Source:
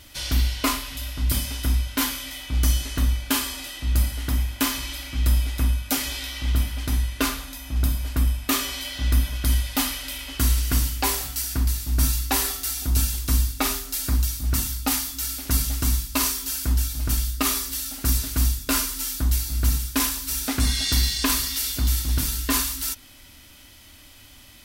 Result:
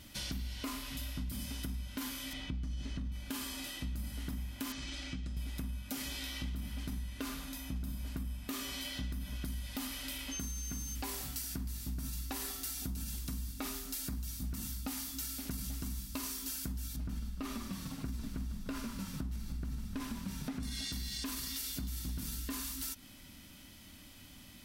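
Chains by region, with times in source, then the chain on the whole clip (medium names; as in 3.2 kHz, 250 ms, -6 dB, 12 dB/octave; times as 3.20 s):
2.33–3.12 s: low-pass 5.3 kHz + bass shelf 370 Hz +7 dB
4.72–5.37 s: low-pass 7.6 kHz 24 dB/octave + peaking EQ 1 kHz -6.5 dB 0.22 oct + compression, threshold -29 dBFS
10.31–10.94 s: compression 2.5:1, threshold -28 dBFS + whistle 6.3 kHz -29 dBFS
16.96–20.63 s: low-pass 2 kHz 6 dB/octave + frequency-shifting echo 149 ms, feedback 60%, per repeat -39 Hz, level -11 dB
whole clip: peaking EQ 190 Hz +13.5 dB 0.94 oct; peak limiter -15.5 dBFS; compression, threshold -29 dBFS; trim -7.5 dB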